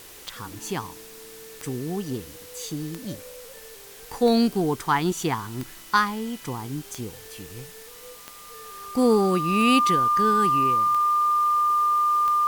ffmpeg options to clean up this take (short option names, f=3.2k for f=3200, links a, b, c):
-af "adeclick=t=4,bandreject=f=1.2k:w=30,afwtdn=0.0056"